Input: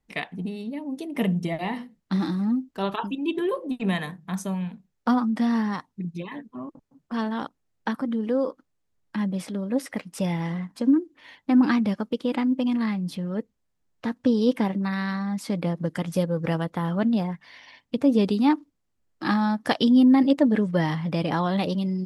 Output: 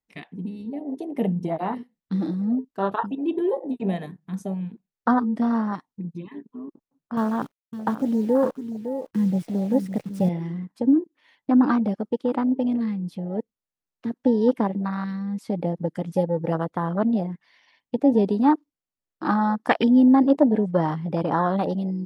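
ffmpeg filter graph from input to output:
ffmpeg -i in.wav -filter_complex "[0:a]asettb=1/sr,asplit=3[link_01][link_02][link_03];[link_01]atrim=end=7.174[link_04];[link_02]atrim=start=7.17:end=10.29,asetpts=PTS-STARTPTS,afade=type=in:duration=0.004:curve=qsin,afade=type=out:start_time=3.116:duration=0.004:curve=qsin,equalizer=frequency=130:width_type=o:width=0.92:gain=14,acrusher=bits=7:dc=4:mix=0:aa=0.000001,aecho=1:1:558:0.355,atrim=end_sample=137592[link_05];[link_03]atrim=start=10.286[link_06];[link_04][link_05]acrossfade=duration=0.004:curve1=hsin:curve2=qsin[link_07];[link_07][link_06]acrossfade=duration=0.004:curve1=qsin:curve2=hsin,afwtdn=0.0447,lowshelf=frequency=250:gain=-9.5,volume=5.5dB" out.wav

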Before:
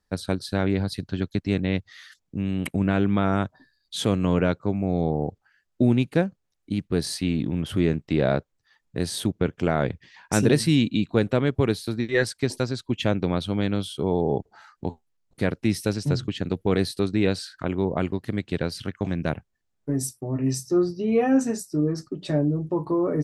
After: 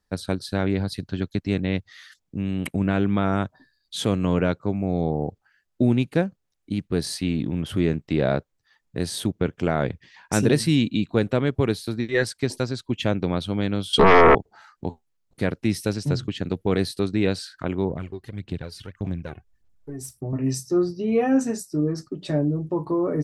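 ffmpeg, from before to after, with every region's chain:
ffmpeg -i in.wav -filter_complex "[0:a]asettb=1/sr,asplit=3[link_01][link_02][link_03];[link_01]atrim=end=13.934[link_04];[link_02]atrim=start=13.93:end=14.35,asetpts=PTS-STARTPTS,afade=type=in:duration=0.004:curve=qsin,afade=type=out:start_time=0.416:duration=0.004:curve=qsin,lowpass=7300,aecho=1:1:4.3:0.9,atrim=end_sample=18522,aeval=exprs='0.355*sin(PI/2*4.47*val(0)/0.355)':channel_layout=same[link_05];[link_03]atrim=start=14.346[link_06];[link_04][link_05]acrossfade=duration=0.004:curve1=hsin:curve2=qsin[link_07];[link_07][link_06]acrossfade=duration=0.004:curve1=qsin:curve2=hsin,asettb=1/sr,asplit=3[link_08][link_09][link_10];[link_08]atrim=end=17.904[link_11];[link_09]atrim=start=17.9:end=20.33,asetpts=PTS-STARTPTS,afade=type=in:duration=0.004:curve=qsin,afade=type=out:start_time=2.426:duration=0.004:curve=qsin,lowshelf=frequency=99:gain=10.5,acompressor=threshold=-49dB:ratio=1.5:attack=3.2:release=140:knee=1:detection=peak,aphaser=in_gain=1:out_gain=1:delay=2.8:decay=0.58:speed=1.7:type=sinusoidal[link_12];[link_10]atrim=start=20.326[link_13];[link_11][link_12]acrossfade=duration=0.004:curve1=hsin:curve2=qsin[link_14];[link_14][link_13]acrossfade=duration=0.004:curve1=qsin:curve2=hsin" out.wav

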